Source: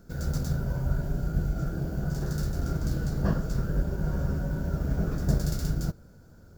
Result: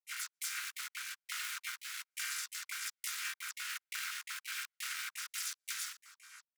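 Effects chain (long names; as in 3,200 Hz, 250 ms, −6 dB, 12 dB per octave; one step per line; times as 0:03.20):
channel vocoder with a chord as carrier minor triad, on F3
spectral tilt +3.5 dB per octave
in parallel at −8 dB: wrap-around overflow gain 40 dB
on the sum: Chebyshev high-pass filter 1,400 Hz, order 5
high-shelf EQ 4,900 Hz +2.5 dB
on a send: echo with shifted repeats 100 ms, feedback 64%, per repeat −54 Hz, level −18.5 dB
on the sum: gate pattern ".xx..xxx.x" 171 BPM −60 dB
rotating-speaker cabinet horn 1.2 Hz
pitch-shifted copies added −5 semitones −17 dB, +7 semitones −1 dB
downward compressor, threshold −53 dBFS, peak gain reduction 9 dB
level +16.5 dB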